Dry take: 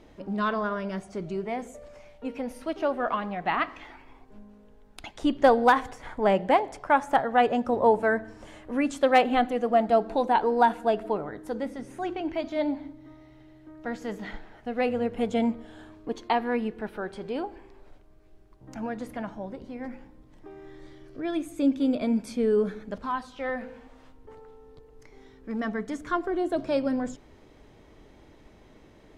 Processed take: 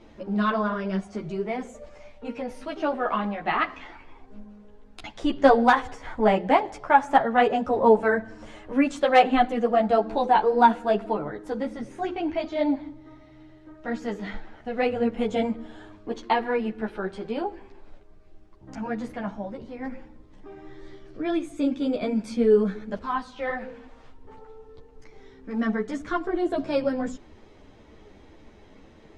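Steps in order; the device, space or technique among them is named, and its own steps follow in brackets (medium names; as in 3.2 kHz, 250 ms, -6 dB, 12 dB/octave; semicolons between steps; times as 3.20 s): string-machine ensemble chorus (three-phase chorus; low-pass 7.4 kHz 12 dB/octave); trim +5.5 dB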